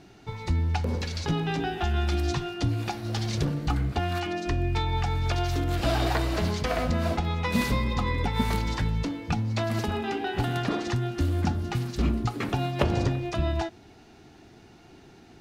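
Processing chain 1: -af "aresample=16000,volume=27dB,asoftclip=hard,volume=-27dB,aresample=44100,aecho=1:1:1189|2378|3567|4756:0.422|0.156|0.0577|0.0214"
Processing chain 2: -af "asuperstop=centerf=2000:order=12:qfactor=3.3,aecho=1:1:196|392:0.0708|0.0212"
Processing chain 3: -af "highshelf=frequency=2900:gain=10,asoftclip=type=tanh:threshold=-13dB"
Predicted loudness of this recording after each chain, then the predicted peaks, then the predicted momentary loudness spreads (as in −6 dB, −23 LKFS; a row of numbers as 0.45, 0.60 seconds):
−30.5, −28.0, −27.5 LKFS; −21.5, −9.5, −13.5 dBFS; 8, 4, 4 LU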